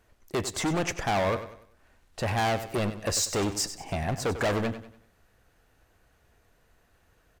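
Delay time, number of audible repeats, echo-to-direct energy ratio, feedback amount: 96 ms, 3, -11.5 dB, 38%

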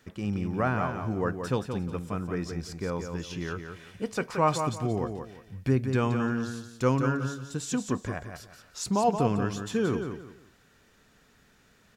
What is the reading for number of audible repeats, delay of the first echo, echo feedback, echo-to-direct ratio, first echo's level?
3, 175 ms, 27%, -6.5 dB, -7.0 dB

